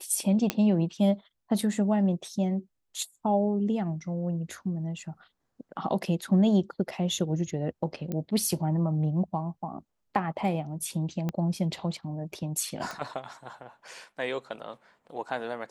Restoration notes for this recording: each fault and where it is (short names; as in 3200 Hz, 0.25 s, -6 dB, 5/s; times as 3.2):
0.5 pop -10 dBFS
8.12 pop -20 dBFS
11.29 pop -18 dBFS
12.91 pop